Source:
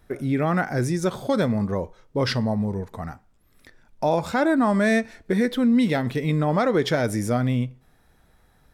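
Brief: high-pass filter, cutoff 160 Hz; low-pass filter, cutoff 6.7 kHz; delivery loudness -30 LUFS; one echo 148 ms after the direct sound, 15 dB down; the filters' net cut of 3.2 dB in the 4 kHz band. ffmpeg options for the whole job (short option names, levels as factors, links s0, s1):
-af "highpass=160,lowpass=6700,equalizer=f=4000:t=o:g=-3.5,aecho=1:1:148:0.178,volume=0.501"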